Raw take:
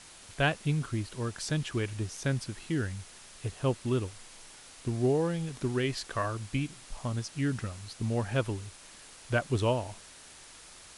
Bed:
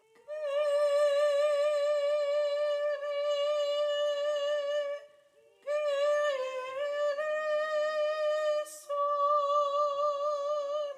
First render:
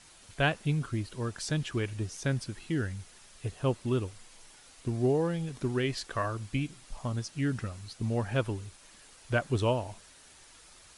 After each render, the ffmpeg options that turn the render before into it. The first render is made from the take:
-af "afftdn=nr=6:nf=-52"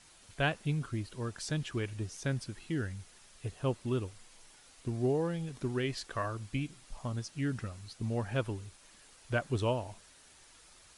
-af "volume=-3.5dB"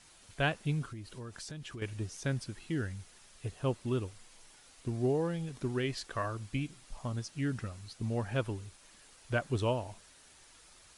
-filter_complex "[0:a]asettb=1/sr,asplit=3[a][b][c];[a]atrim=end=0.924[d];[b]atrim=start=0.92:end=1.82,asetpts=PTS-STARTPTS,afade=t=in:d=0.004:c=qsin,afade=t=out:st=0.896:d=0.004:c=qsin,acompressor=threshold=-41dB:ratio=5:attack=3.2:release=140:knee=1:detection=peak[e];[c]atrim=start=1.816[f];[d][e]acrossfade=d=0.004:c1=hsin:c2=qsin[g];[g][f]acrossfade=d=0.004:c1=qsin:c2=hsin"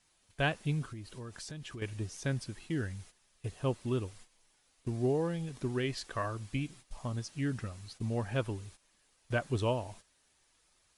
-af "bandreject=f=1.4k:w=23,agate=range=-12dB:threshold=-52dB:ratio=16:detection=peak"

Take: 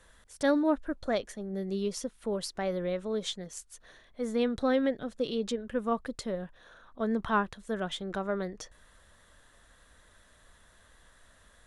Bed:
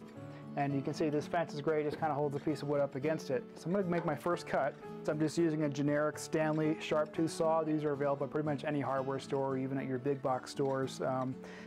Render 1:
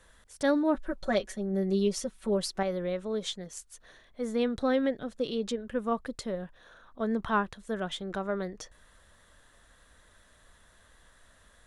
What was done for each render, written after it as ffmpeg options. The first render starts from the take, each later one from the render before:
-filter_complex "[0:a]asettb=1/sr,asplit=3[a][b][c];[a]atrim=end=0.744[d];[b]atrim=start=0.74:end=2.63,asetpts=PTS-STARTPTS,afade=t=in:d=0.004:c=qsin,afade=t=out:st=1.886:d=0.004:c=qsin,aecho=1:1:5.3:0.94,atrim=end_sample=83349[e];[c]atrim=start=2.626[f];[d][e]acrossfade=d=0.004:c1=hsin:c2=qsin[g];[g][f]acrossfade=d=0.004:c1=qsin:c2=hsin"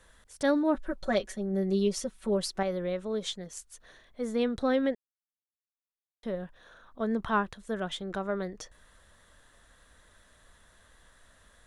-filter_complex "[0:a]asplit=3[a][b][c];[a]atrim=end=4.95,asetpts=PTS-STARTPTS,afade=t=out:st=4.946:d=0.004:c=hsin[d];[b]atrim=start=4.95:end=6.23,asetpts=PTS-STARTPTS,volume=0[e];[c]atrim=start=6.23,asetpts=PTS-STARTPTS,afade=t=in:d=0.004:c=hsin[f];[d][e][f]concat=n=3:v=0:a=1"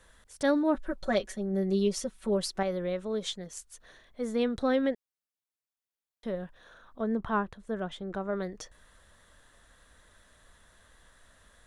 -filter_complex "[0:a]asettb=1/sr,asplit=3[a][b][c];[a]atrim=end=7.014[d];[b]atrim=start=7.01:end=8.33,asetpts=PTS-STARTPTS,afade=t=in:d=0.004:c=qsin,afade=t=out:st=1.316:d=0.004:c=qsin,highshelf=f=2.1k:g=-10.5[e];[c]atrim=start=8.326[f];[d][e]acrossfade=d=0.004:c1=hsin:c2=qsin[g];[g][f]acrossfade=d=0.004:c1=qsin:c2=hsin"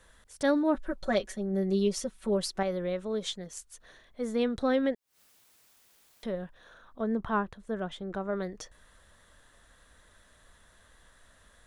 -filter_complex "[0:a]asettb=1/sr,asplit=3[a][b][c];[a]atrim=end=4.784[d];[b]atrim=start=4.78:end=6.43,asetpts=PTS-STARTPTS,afade=t=in:d=0.004:c=qsin,afade=t=out:st=1.646:d=0.004:c=qsin,acompressor=mode=upward:threshold=-38dB:ratio=2.5:attack=3.2:release=140:knee=2.83:detection=peak[e];[c]atrim=start=6.426[f];[d][e]acrossfade=d=0.004:c1=hsin:c2=qsin[g];[g][f]acrossfade=d=0.004:c1=qsin:c2=hsin"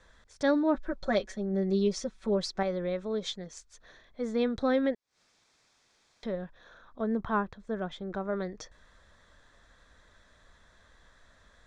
-af "lowpass=f=6.6k:w=0.5412,lowpass=f=6.6k:w=1.3066,bandreject=f=2.9k:w=7.6"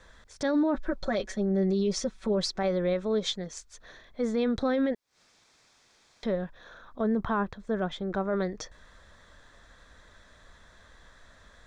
-af "acontrast=28,alimiter=limit=-19.5dB:level=0:latency=1:release=22"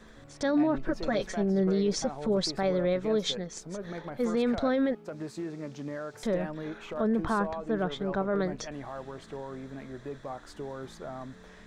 -filter_complex "[1:a]volume=-5.5dB[a];[0:a][a]amix=inputs=2:normalize=0"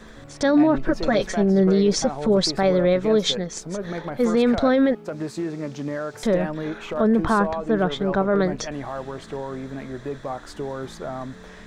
-af "volume=8.5dB"

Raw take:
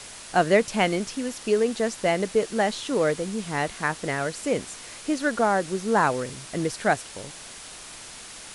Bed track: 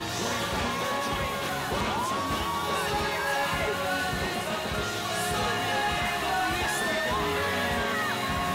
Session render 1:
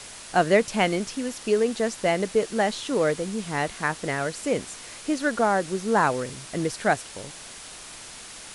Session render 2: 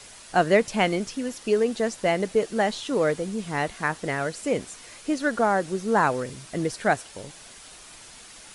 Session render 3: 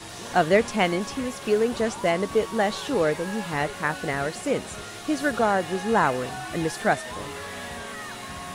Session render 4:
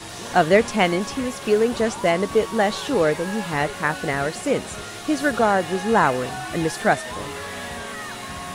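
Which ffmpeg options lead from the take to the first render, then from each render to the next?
-af anull
-af "afftdn=nr=6:nf=-42"
-filter_complex "[1:a]volume=-8.5dB[a];[0:a][a]amix=inputs=2:normalize=0"
-af "volume=3.5dB"

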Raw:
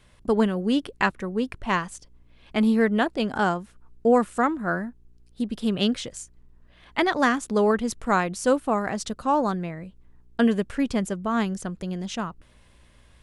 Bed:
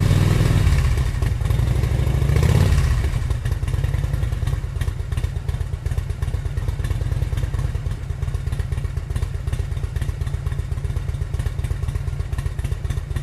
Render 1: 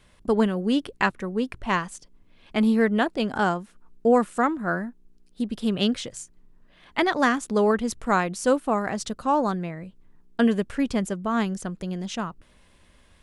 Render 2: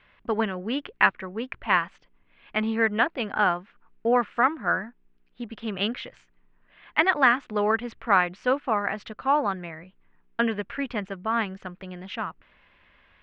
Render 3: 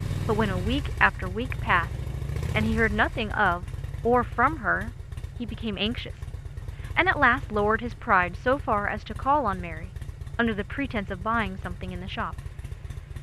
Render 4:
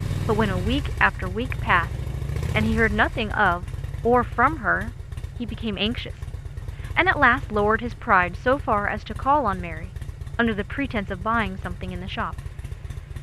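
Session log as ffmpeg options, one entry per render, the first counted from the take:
-af "bandreject=f=60:t=h:w=4,bandreject=f=120:t=h:w=4"
-af "lowpass=f=2.6k:w=0.5412,lowpass=f=2.6k:w=1.3066,tiltshelf=f=830:g=-8.5"
-filter_complex "[1:a]volume=-13dB[a];[0:a][a]amix=inputs=2:normalize=0"
-af "volume=3dB,alimiter=limit=-3dB:level=0:latency=1"

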